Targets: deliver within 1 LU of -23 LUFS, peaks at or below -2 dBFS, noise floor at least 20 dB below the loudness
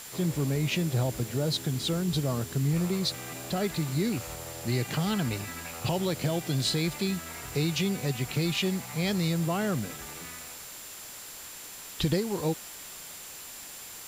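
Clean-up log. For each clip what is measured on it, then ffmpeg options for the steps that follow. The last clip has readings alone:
steady tone 7.3 kHz; tone level -48 dBFS; noise floor -44 dBFS; noise floor target -50 dBFS; loudness -30.0 LUFS; peak level -14.5 dBFS; loudness target -23.0 LUFS
-> -af "bandreject=f=7300:w=30"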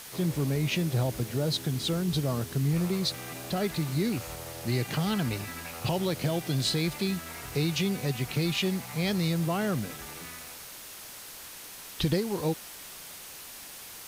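steady tone not found; noise floor -45 dBFS; noise floor target -50 dBFS
-> -af "afftdn=nr=6:nf=-45"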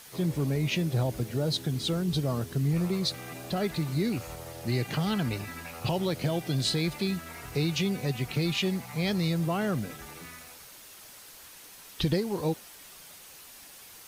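noise floor -50 dBFS; loudness -30.0 LUFS; peak level -14.5 dBFS; loudness target -23.0 LUFS
-> -af "volume=2.24"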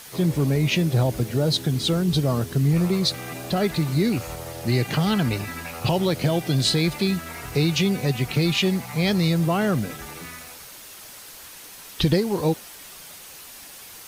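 loudness -23.0 LUFS; peak level -7.5 dBFS; noise floor -43 dBFS

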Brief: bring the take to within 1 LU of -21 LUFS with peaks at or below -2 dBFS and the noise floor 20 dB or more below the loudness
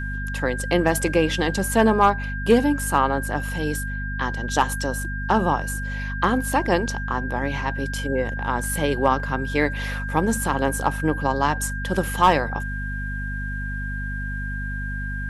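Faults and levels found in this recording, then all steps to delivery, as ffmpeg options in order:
hum 50 Hz; highest harmonic 250 Hz; hum level -27 dBFS; steady tone 1.6 kHz; tone level -31 dBFS; loudness -23.5 LUFS; peak level -5.5 dBFS; loudness target -21.0 LUFS
-> -af "bandreject=f=50:t=h:w=4,bandreject=f=100:t=h:w=4,bandreject=f=150:t=h:w=4,bandreject=f=200:t=h:w=4,bandreject=f=250:t=h:w=4"
-af "bandreject=f=1600:w=30"
-af "volume=1.33"

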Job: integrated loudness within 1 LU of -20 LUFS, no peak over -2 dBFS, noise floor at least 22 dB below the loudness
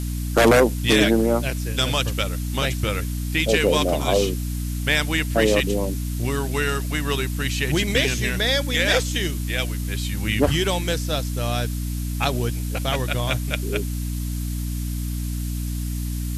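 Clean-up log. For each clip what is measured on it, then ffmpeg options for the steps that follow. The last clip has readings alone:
hum 60 Hz; highest harmonic 300 Hz; hum level -24 dBFS; noise floor -27 dBFS; noise floor target -45 dBFS; loudness -22.5 LUFS; peak level -6.0 dBFS; loudness target -20.0 LUFS
-> -af "bandreject=f=60:t=h:w=4,bandreject=f=120:t=h:w=4,bandreject=f=180:t=h:w=4,bandreject=f=240:t=h:w=4,bandreject=f=300:t=h:w=4"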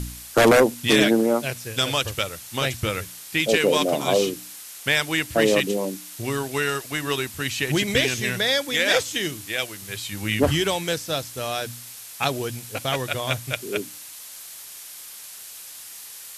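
hum not found; noise floor -41 dBFS; noise floor target -45 dBFS
-> -af "afftdn=nr=6:nf=-41"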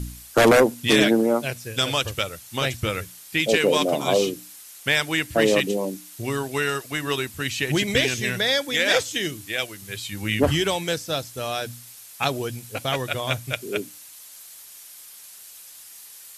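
noise floor -44 dBFS; noise floor target -45 dBFS
-> -af "afftdn=nr=6:nf=-44"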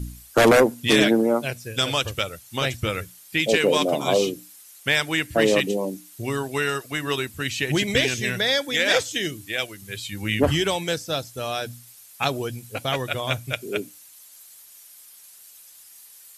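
noise floor -48 dBFS; loudness -23.0 LUFS; peak level -6.5 dBFS; loudness target -20.0 LUFS
-> -af "volume=1.41"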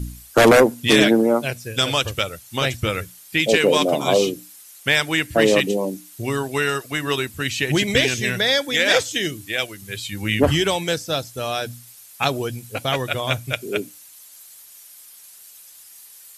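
loudness -20.0 LUFS; peak level -3.5 dBFS; noise floor -45 dBFS

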